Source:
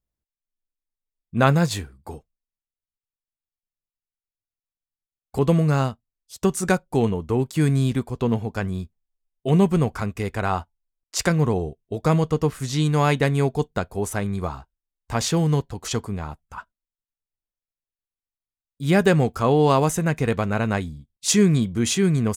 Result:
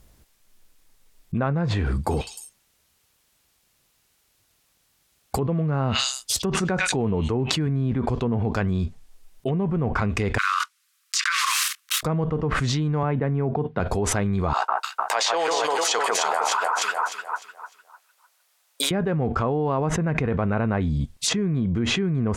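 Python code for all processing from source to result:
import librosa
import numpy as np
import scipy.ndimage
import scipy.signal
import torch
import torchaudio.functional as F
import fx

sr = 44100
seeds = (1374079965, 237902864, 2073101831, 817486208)

y = fx.chain(x, sr, fx.highpass(hz=49.0, slope=12),
    fx.echo_stepped(ms=102, hz=3100.0, octaves=0.7, feedback_pct=70, wet_db=-6), at=(1.96, 7.67))
y = fx.chain(y, sr, fx.block_float(bits=5),
    fx.steep_highpass(hz=1100.0, slope=96), at=(10.38, 12.03))
y = fx.chain(y, sr, fx.highpass(hz=100.0, slope=24),
    fx.air_absorb(metres=330.0), at=(13.03, 13.8))
y = fx.chain(y, sr, fx.highpass(hz=570.0, slope=24),
    fx.echo_alternate(ms=151, hz=1800.0, feedback_pct=55, wet_db=-2.5), at=(14.53, 18.91))
y = fx.env_lowpass_down(y, sr, base_hz=1600.0, full_db=-18.0)
y = fx.env_flatten(y, sr, amount_pct=100)
y = y * 10.0 ** (-9.5 / 20.0)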